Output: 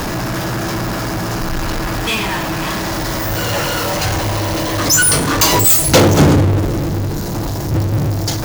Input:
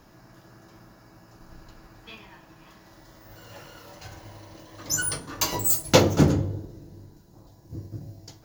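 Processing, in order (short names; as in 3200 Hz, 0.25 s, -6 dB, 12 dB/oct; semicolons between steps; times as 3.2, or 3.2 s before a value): power-law curve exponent 0.35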